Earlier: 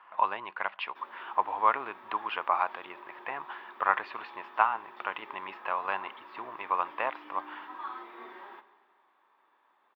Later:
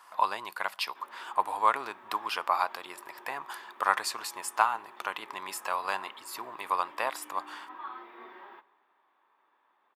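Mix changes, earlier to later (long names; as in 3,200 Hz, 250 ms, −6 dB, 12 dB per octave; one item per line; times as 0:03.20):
speech: remove Butterworth low-pass 3,000 Hz 36 dB per octave
background: send −8.0 dB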